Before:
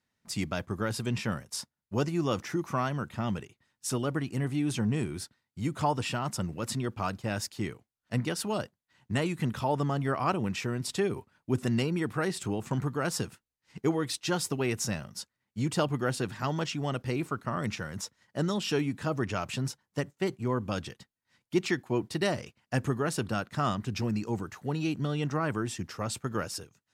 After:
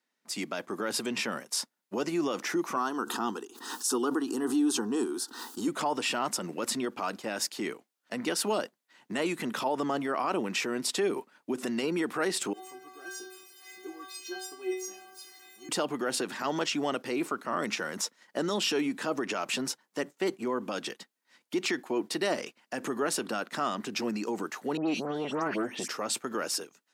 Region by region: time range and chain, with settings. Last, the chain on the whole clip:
2.76–5.68 s: static phaser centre 590 Hz, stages 6 + swell ahead of each attack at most 66 dB/s
12.53–15.69 s: jump at every zero crossing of -33 dBFS + peaking EQ 310 Hz +6 dB 0.26 oct + inharmonic resonator 370 Hz, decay 0.63 s, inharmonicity 0.008
24.77–25.88 s: bass shelf 470 Hz +6 dB + phase dispersion highs, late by 121 ms, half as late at 2.6 kHz + transformer saturation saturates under 390 Hz
whole clip: level rider gain up to 7 dB; peak limiter -19 dBFS; high-pass 250 Hz 24 dB/octave

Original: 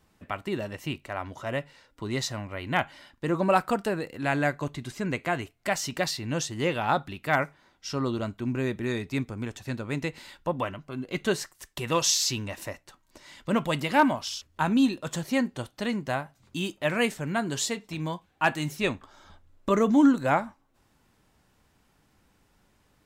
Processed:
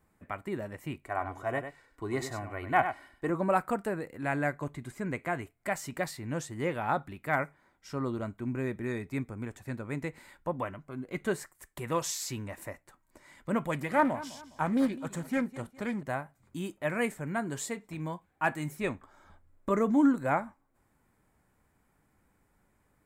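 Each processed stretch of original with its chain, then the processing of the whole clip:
1.05–3.30 s: comb 2.7 ms, depth 48% + dynamic bell 800 Hz, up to +6 dB, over -41 dBFS, Q 0.92 + delay 97 ms -9 dB
13.71–16.03 s: feedback delay 206 ms, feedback 35%, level -17 dB + loudspeaker Doppler distortion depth 0.36 ms
whole clip: high-order bell 4.3 kHz -10 dB 1.3 oct; band-stop 2.7 kHz, Q 12; trim -4.5 dB

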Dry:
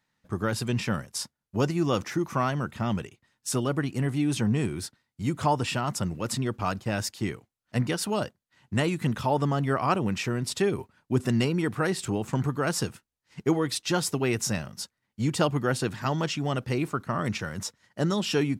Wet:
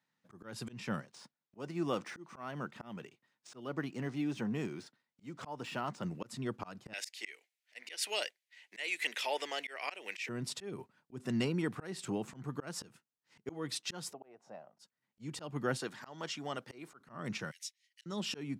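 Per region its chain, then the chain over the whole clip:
1.00–6.04 s: de-esser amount 85% + high-pass 210 Hz 6 dB/octave + decimation joined by straight lines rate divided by 3×
6.93–10.29 s: high-pass 450 Hz 24 dB/octave + resonant high shelf 1.6 kHz +9.5 dB, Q 3
14.13–14.79 s: band-pass filter 690 Hz, Q 3.8 + slow attack 266 ms
15.77–17.00 s: high-pass 490 Hz 6 dB/octave + band-stop 2.6 kHz, Q 13
17.51–18.06 s: steep high-pass 2.1 kHz 48 dB/octave + band-stop 7.4 kHz, Q 16
whole clip: high-pass 130 Hz 24 dB/octave; treble shelf 12 kHz -8.5 dB; slow attack 252 ms; trim -7 dB

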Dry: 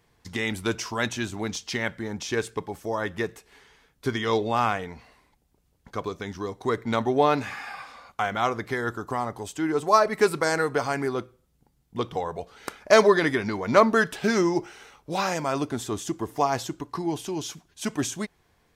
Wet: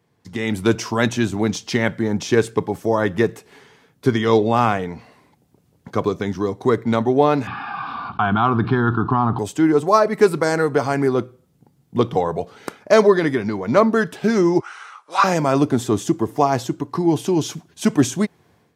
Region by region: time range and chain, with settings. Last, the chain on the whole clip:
7.47–9.39 s: low-pass 2.6 kHz + static phaser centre 2 kHz, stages 6 + level flattener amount 50%
14.60–15.24 s: resonant high-pass 1.2 kHz, resonance Q 4.5 + careless resampling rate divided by 2×, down none, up filtered
whole clip: high-pass 100 Hz 24 dB/octave; tilt shelf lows +4.5 dB, about 690 Hz; level rider gain up to 11.5 dB; trim -1 dB

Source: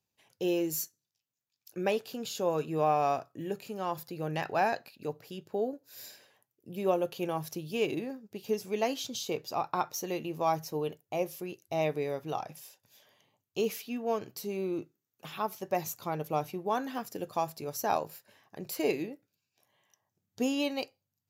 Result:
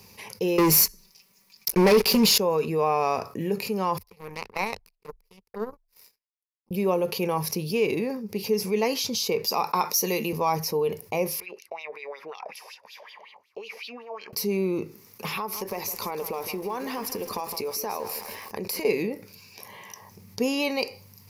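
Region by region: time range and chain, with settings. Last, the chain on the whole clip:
0.58–2.38 s: comb 5.2 ms, depth 79% + waveshaping leveller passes 5
3.98–6.71 s: treble shelf 7.8 kHz +5.5 dB + touch-sensitive flanger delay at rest 4.3 ms, full sweep at -28 dBFS + power-law waveshaper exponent 3
9.44–10.33 s: high-pass 160 Hz 24 dB/octave + treble shelf 4.2 kHz +11 dB
11.40–14.33 s: peaking EQ 110 Hz -13 dB 1.3 oct + compression, threshold -41 dBFS + wah-wah 5.4 Hz 600–3600 Hz, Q 4.5
15.37–18.85 s: peaking EQ 150 Hz -15 dB 0.55 oct + compression 5:1, threshold -41 dBFS + bit-crushed delay 160 ms, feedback 55%, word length 9-bit, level -11 dB
whole clip: rippled EQ curve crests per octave 0.86, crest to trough 10 dB; level flattener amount 50%; trim -4 dB

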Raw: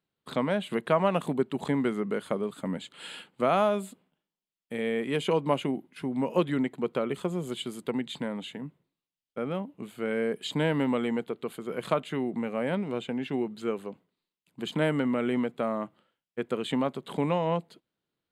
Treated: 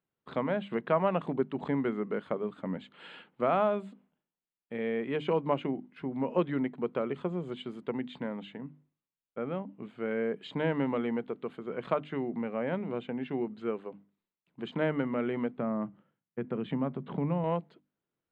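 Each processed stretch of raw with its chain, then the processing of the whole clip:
15.57–17.44 s: tone controls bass +14 dB, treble -13 dB + compression 2:1, threshold -27 dBFS + high-pass 120 Hz
whole clip: low-pass 2.3 kHz 12 dB/octave; hum notches 50/100/150/200/250/300 Hz; trim -2.5 dB

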